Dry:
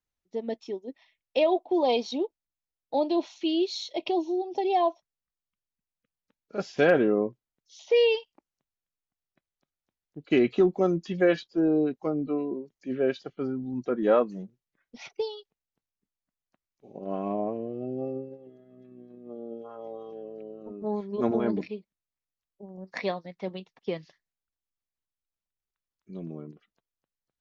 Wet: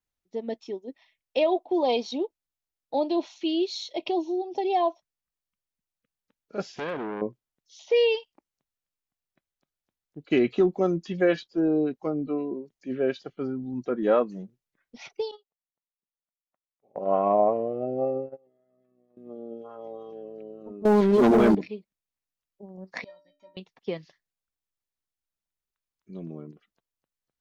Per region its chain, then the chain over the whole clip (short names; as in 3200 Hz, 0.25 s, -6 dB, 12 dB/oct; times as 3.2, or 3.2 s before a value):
6.67–7.22 bell 840 Hz -4.5 dB 1.7 oct + compressor 3:1, threshold -26 dBFS + core saturation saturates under 1100 Hz
15.31–19.17 band shelf 990 Hz +11.5 dB 2.3 oct + notch 1600 Hz, Q 5.2 + gate -36 dBFS, range -20 dB
20.85–21.55 low shelf 60 Hz -9.5 dB + sample leveller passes 3 + fast leveller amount 70%
23.04–23.57 high shelf 5900 Hz +9 dB + compressor 4:1, threshold -30 dBFS + metallic resonator 280 Hz, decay 0.41 s, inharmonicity 0.03
whole clip: dry